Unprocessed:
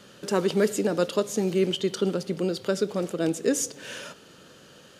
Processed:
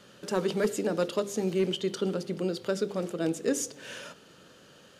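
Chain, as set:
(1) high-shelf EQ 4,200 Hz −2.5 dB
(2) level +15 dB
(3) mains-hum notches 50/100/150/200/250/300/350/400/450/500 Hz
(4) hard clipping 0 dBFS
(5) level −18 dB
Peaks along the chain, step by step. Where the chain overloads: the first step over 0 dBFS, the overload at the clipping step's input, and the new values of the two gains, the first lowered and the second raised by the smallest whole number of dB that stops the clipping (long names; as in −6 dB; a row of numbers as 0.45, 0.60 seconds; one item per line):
−10.5, +4.0, +5.0, 0.0, −18.0 dBFS
step 2, 5.0 dB
step 2 +10 dB, step 5 −13 dB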